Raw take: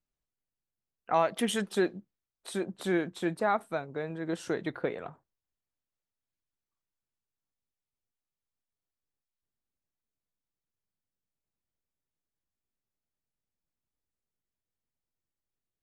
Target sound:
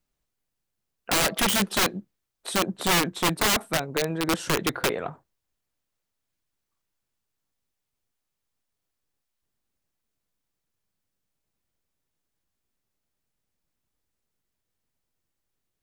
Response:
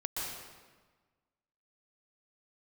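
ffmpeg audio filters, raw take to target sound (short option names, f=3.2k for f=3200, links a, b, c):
-af "aeval=exprs='(mod(18.8*val(0)+1,2)-1)/18.8':c=same,volume=9dB"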